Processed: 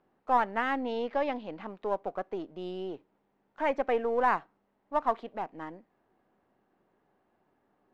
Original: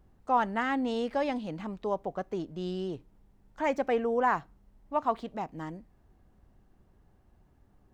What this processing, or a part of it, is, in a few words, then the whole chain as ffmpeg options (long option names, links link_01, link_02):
crystal radio: -filter_complex "[0:a]highpass=330,lowpass=2800,aeval=exprs='if(lt(val(0),0),0.708*val(0),val(0))':channel_layout=same,asettb=1/sr,asplit=3[link_01][link_02][link_03];[link_01]atrim=end=0.834[link_04];[link_02]atrim=start=0.83:end=1.69,asetpts=PTS-STARTPTS,afade=type=in:duration=0.004:curve=qsin,afade=type=out:start_time=0.856:duration=0.004:curve=qsin,lowpass=frequency=7000:width=0.5412,lowpass=frequency=7000:width=1.3066[link_05];[link_03]atrim=start=1.686[link_06];[link_04][link_05]acrossfade=duration=0.004:curve1=hsin:curve2=qsin[link_07];[link_07][link_06]acrossfade=duration=0.004:curve1=qsin:curve2=hsin,volume=2dB"